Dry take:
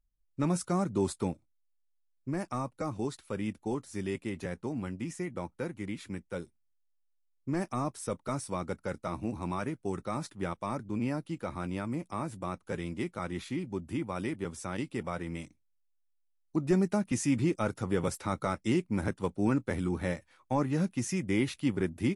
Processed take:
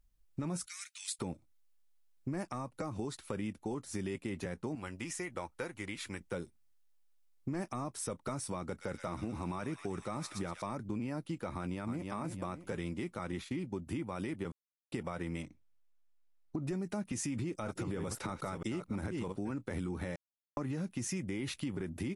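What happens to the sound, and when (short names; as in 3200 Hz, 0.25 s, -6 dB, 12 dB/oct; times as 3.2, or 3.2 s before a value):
0.66–1.19 steep high-pass 2000 Hz
2.45–2.97 compressor 2:1, threshold -39 dBFS
4.75–6.21 bell 180 Hz -13 dB 2.5 oct
8.67–10.62 thin delay 0.12 s, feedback 78%, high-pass 2300 Hz, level -7 dB
11.55–12.04 echo throw 0.31 s, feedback 30%, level -8 dB
13.32–13.87 expander -41 dBFS
14.52–14.92 mute
15.42–16.62 LPF 2100 Hz 6 dB/oct
17.33–19.52 reverse delay 0.325 s, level -10 dB
20.16–20.57 mute
whole clip: de-esser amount 55%; limiter -27 dBFS; compressor 3:1, threshold -45 dBFS; gain +7.5 dB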